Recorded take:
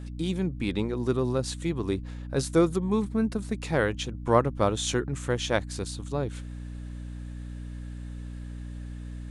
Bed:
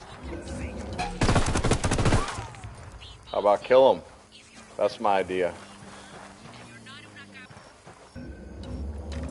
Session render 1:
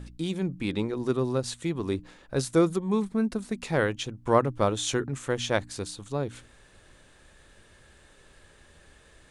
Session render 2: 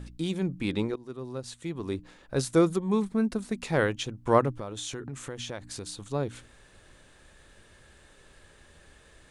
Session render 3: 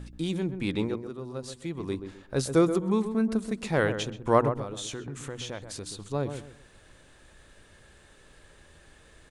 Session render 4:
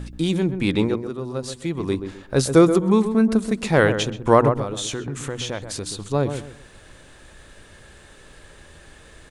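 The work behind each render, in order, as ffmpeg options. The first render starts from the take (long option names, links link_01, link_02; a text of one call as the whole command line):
ffmpeg -i in.wav -af "bandreject=frequency=60:width_type=h:width=4,bandreject=frequency=120:width_type=h:width=4,bandreject=frequency=180:width_type=h:width=4,bandreject=frequency=240:width_type=h:width=4,bandreject=frequency=300:width_type=h:width=4" out.wav
ffmpeg -i in.wav -filter_complex "[0:a]asettb=1/sr,asplit=3[link_01][link_02][link_03];[link_01]atrim=end=4.564[link_04];[link_02]atrim=start=4.56:end=6.02,asetpts=PTS-STARTPTS,afade=type=in:duration=0.004:curve=qsin,afade=type=out:start_time=1.456:duration=0.004:curve=qsin,acompressor=threshold=-33dB:ratio=6:attack=3.2:release=140:knee=1:detection=peak[link_05];[link_03]atrim=start=6.016[link_06];[link_04][link_05]acrossfade=duration=0.004:curve1=hsin:curve2=qsin[link_07];[link_07][link_06]acrossfade=duration=0.004:curve1=qsin:curve2=hsin,asplit=2[link_08][link_09];[link_08]atrim=end=0.96,asetpts=PTS-STARTPTS,afade=type=out:start_time=0.956:duration=0.004:curve=hsin:silence=0.112202[link_10];[link_09]atrim=start=0.96,asetpts=PTS-STARTPTS,afade=type=in:duration=1.49:silence=0.112202[link_11];[link_10][link_11]concat=n=2:v=0:a=1" out.wav
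ffmpeg -i in.wav -filter_complex "[0:a]asplit=2[link_01][link_02];[link_02]adelay=129,lowpass=frequency=1200:poles=1,volume=-8dB,asplit=2[link_03][link_04];[link_04]adelay=129,lowpass=frequency=1200:poles=1,volume=0.29,asplit=2[link_05][link_06];[link_06]adelay=129,lowpass=frequency=1200:poles=1,volume=0.29[link_07];[link_01][link_03][link_05][link_07]amix=inputs=4:normalize=0" out.wav
ffmpeg -i in.wav -af "volume=8.5dB,alimiter=limit=-3dB:level=0:latency=1" out.wav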